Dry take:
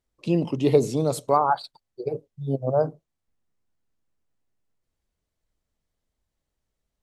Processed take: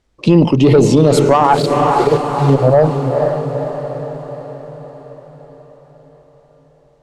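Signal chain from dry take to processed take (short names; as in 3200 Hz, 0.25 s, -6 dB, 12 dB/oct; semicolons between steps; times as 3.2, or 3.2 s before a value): tube stage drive 13 dB, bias 0.25; 1.44–2.55 sample gate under -38 dBFS; air absorption 64 m; diffused feedback echo 0.462 s, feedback 56%, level -9 dB; maximiser +19.5 dB; gain -1 dB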